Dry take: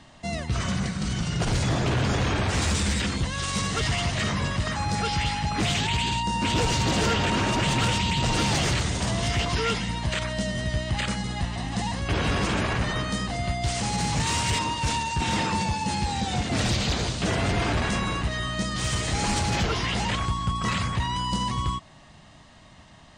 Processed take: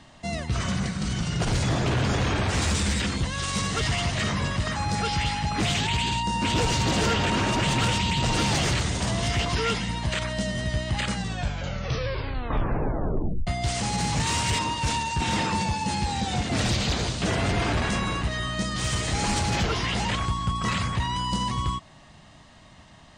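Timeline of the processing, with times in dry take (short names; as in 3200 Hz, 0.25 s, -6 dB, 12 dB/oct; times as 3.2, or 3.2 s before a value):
11.1 tape stop 2.37 s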